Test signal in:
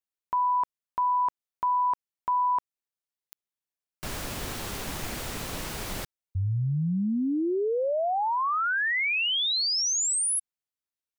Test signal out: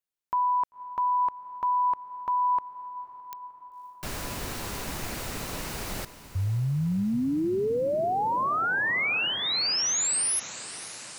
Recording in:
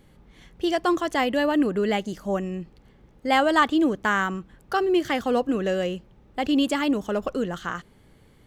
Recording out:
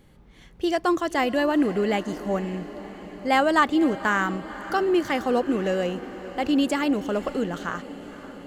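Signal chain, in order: dynamic bell 3.3 kHz, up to -6 dB, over -51 dBFS, Q 7.2; echo that smears into a reverb 530 ms, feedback 69%, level -15.5 dB

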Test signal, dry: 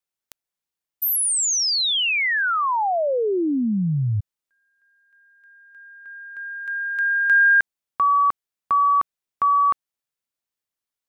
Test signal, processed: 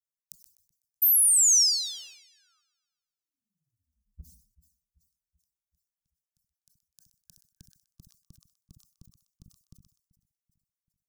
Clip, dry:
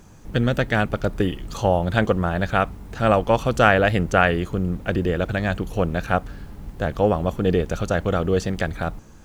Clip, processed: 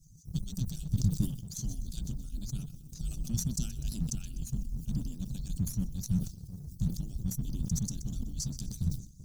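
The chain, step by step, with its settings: harmonic-percussive separation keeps percussive; elliptic band-stop 170–5500 Hz, stop band 50 dB; two-band feedback delay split 640 Hz, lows 385 ms, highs 125 ms, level -15.5 dB; in parallel at -3 dB: crossover distortion -48 dBFS; on the sum: decay stretcher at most 120 dB/s; trim -2.5 dB

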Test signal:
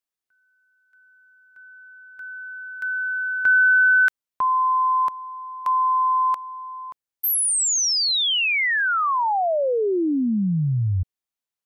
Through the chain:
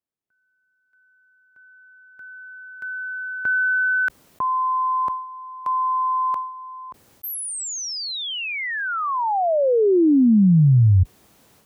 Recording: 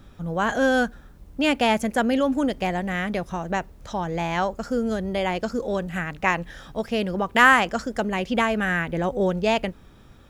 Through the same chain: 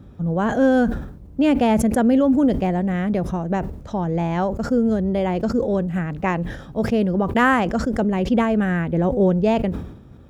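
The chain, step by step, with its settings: high-pass 63 Hz 12 dB/octave; tilt shelf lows +8.5 dB, about 820 Hz; decay stretcher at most 74 dB/s

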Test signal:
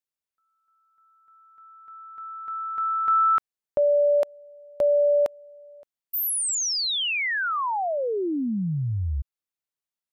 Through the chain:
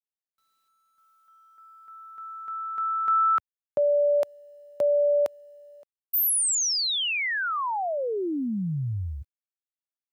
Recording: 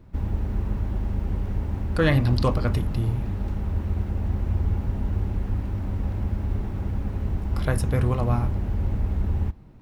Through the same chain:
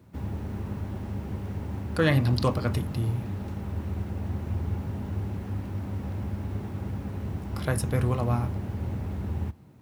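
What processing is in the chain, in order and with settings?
high-pass 84 Hz 24 dB/octave; treble shelf 6 kHz +5.5 dB; word length cut 12-bit, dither none; trim -2 dB

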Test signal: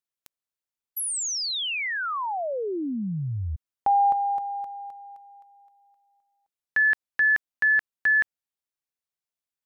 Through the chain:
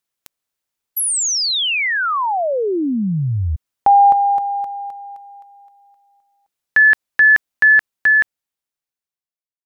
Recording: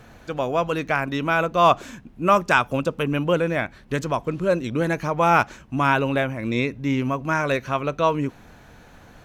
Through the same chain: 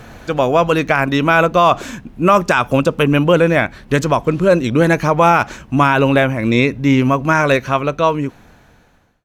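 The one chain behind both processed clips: fade out at the end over 1.95 s; loudness maximiser +11 dB; trim -1 dB

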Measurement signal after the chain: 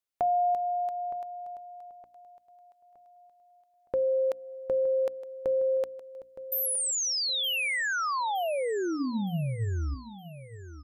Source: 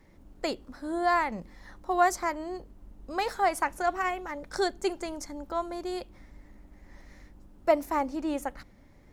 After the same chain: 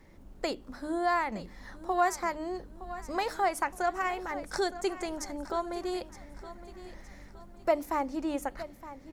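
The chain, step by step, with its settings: in parallel at +3 dB: compression, threshold -34 dBFS; on the sum: hum notches 60/120/180/240/300 Hz; feedback delay 916 ms, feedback 41%, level -15 dB; trim -5.5 dB

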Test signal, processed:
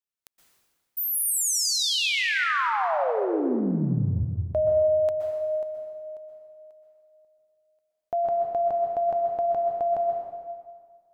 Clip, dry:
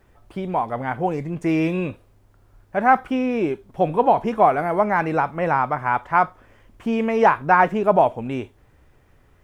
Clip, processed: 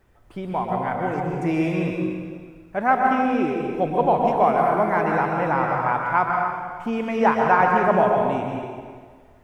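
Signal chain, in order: plate-style reverb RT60 1.8 s, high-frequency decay 0.85×, pre-delay 110 ms, DRR 0 dB; trim -3.5 dB

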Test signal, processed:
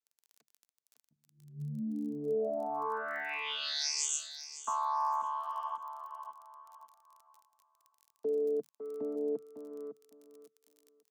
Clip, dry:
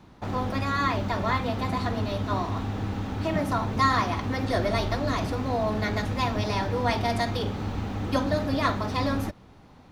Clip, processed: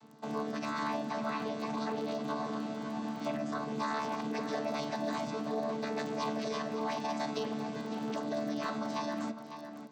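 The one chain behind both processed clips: vocoder on a held chord bare fifth, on D3; peak limiter -24.5 dBFS; on a send: tape echo 554 ms, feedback 23%, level -8 dB, low-pass 4.3 kHz; on the sum: crackle 30 per s -54 dBFS; tone controls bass -11 dB, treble +13 dB

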